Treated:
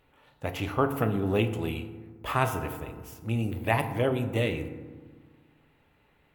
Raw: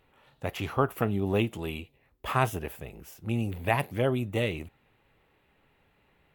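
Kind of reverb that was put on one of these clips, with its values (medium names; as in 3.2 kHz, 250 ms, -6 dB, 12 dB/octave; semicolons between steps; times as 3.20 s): FDN reverb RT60 1.5 s, low-frequency decay 1.4×, high-frequency decay 0.4×, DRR 7 dB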